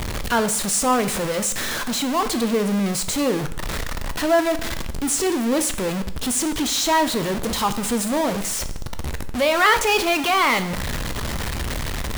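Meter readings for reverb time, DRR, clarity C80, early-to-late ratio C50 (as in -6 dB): 0.80 s, 10.0 dB, 16.5 dB, 13.5 dB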